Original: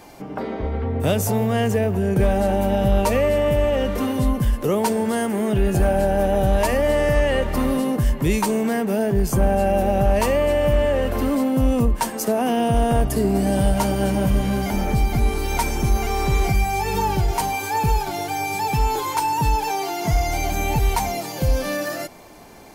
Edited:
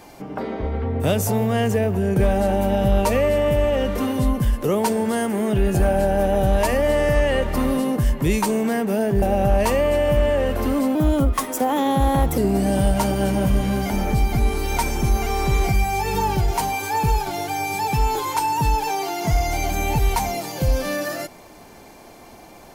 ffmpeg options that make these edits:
-filter_complex "[0:a]asplit=4[a][b][c][d];[a]atrim=end=9.222[e];[b]atrim=start=9.778:end=11.514[f];[c]atrim=start=11.51:end=13.18,asetpts=PTS-STARTPTS,asetrate=51597,aresample=44100,atrim=end_sample=62946,asetpts=PTS-STARTPTS[g];[d]atrim=start=13.176[h];[e][f]acrossfade=d=0.004:c1=hsin:c2=hsin[i];[i][g]acrossfade=d=0.004:c1=hsin:c2=hsin[j];[j][h]acrossfade=d=0.004:c1=hsin:c2=hsin"

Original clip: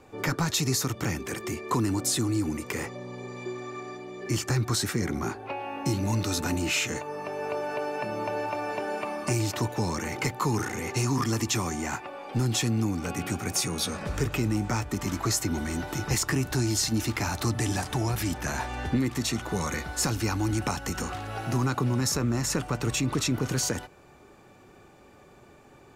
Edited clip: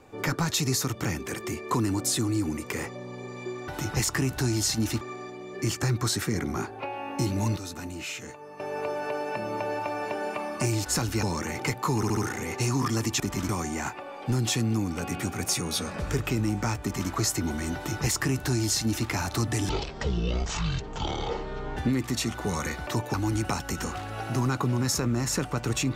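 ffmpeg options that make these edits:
-filter_complex "[0:a]asplit=16[a][b][c][d][e][f][g][h][i][j][k][l][m][n][o][p];[a]atrim=end=3.682[q];[b]atrim=start=15.818:end=17.152[r];[c]atrim=start=3.678:end=6.242[s];[d]atrim=start=6.238:end=7.272,asetpts=PTS-STARTPTS,volume=-9dB[t];[e]atrim=start=7.268:end=9.532[u];[f]atrim=start=19.938:end=20.312[v];[g]atrim=start=9.798:end=10.602[w];[h]atrim=start=10.528:end=10.602[x];[i]atrim=start=10.528:end=10.602[y];[j]atrim=start=10.528:end=11.562[z];[k]atrim=start=14.888:end=15.182[aa];[l]atrim=start=11.558:end=17.764[ab];[m]atrim=start=17.76:end=18.84,asetpts=PTS-STARTPTS,asetrate=22932,aresample=44100,atrim=end_sample=91592,asetpts=PTS-STARTPTS[ac];[n]atrim=start=18.836:end=19.942[ad];[o]atrim=start=9.528:end=9.802[ae];[p]atrim=start=20.308[af];[q][r]acrossfade=d=0.004:c1=hsin:c2=hsin[ag];[ag][s]acrossfade=d=0.004:c1=hsin:c2=hsin[ah];[ah][t]acrossfade=d=0.004:c1=hsin:c2=hsin[ai];[ai][u]acrossfade=d=0.004:c1=hsin:c2=hsin[aj];[aj][v]acrossfade=d=0.004:c1=hsin:c2=hsin[ak];[ak][w]acrossfade=d=0.004:c1=hsin:c2=hsin[al];[al][x]acrossfade=d=0.004:c1=hsin:c2=hsin[am];[am][y]acrossfade=d=0.004:c1=hsin:c2=hsin[an];[an][z]acrossfade=d=0.004:c1=hsin:c2=hsin[ao];[ao][aa]acrossfade=d=0.004:c1=hsin:c2=hsin[ap];[ap][ab]acrossfade=d=0.004:c1=hsin:c2=hsin[aq];[aq][ac]acrossfade=d=0.004:c1=hsin:c2=hsin[ar];[ar][ad]acrossfade=d=0.004:c1=hsin:c2=hsin[as];[as][ae]acrossfade=d=0.004:c1=hsin:c2=hsin[at];[at][af]acrossfade=d=0.004:c1=hsin:c2=hsin"

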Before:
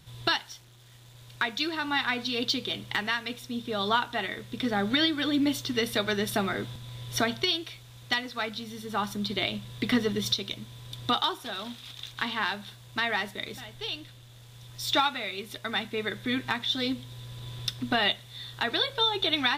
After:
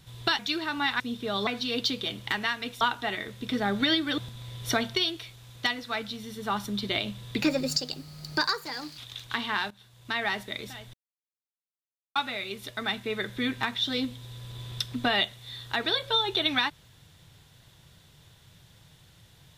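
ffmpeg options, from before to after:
-filter_complex "[0:a]asplit=11[a][b][c][d][e][f][g][h][i][j][k];[a]atrim=end=0.392[l];[b]atrim=start=1.498:end=2.112[m];[c]atrim=start=3.448:end=3.922[n];[d]atrim=start=2.108:end=3.452[o];[e]atrim=start=3.918:end=5.292[p];[f]atrim=start=6.648:end=9.894[q];[g]atrim=start=9.89:end=11.85,asetpts=PTS-STARTPTS,asetrate=55566,aresample=44100[r];[h]atrim=start=11.846:end=12.58,asetpts=PTS-STARTPTS,afade=t=out:st=0.73:d=0.004:c=hsin:silence=0.125893[s];[i]atrim=start=12.58:end=13.81,asetpts=PTS-STARTPTS,afade=t=in:d=0.58:silence=0.125893,afade=t=out:st=1.226:d=0.004:c=hsin[t];[j]atrim=start=13.81:end=15.03,asetpts=PTS-STARTPTS,volume=0[u];[k]atrim=start=15.03,asetpts=PTS-STARTPTS,afade=t=in:d=0.004:c=hsin[v];[l][m]acrossfade=d=0.004:c1=hsin:c2=hsin[w];[w][n]acrossfade=d=0.004:c1=hsin:c2=hsin[x];[x][o]acrossfade=d=0.004:c1=hsin:c2=hsin[y];[y][p]acrossfade=d=0.004:c1=hsin:c2=hsin[z];[z][q]acrossfade=d=0.004:c1=hsin:c2=hsin[aa];[aa][r]acrossfade=d=0.004:c1=hsin:c2=hsin[ab];[s][t][u][v]concat=n=4:v=0:a=1[ac];[ab][ac]acrossfade=d=0.004:c1=hsin:c2=hsin"

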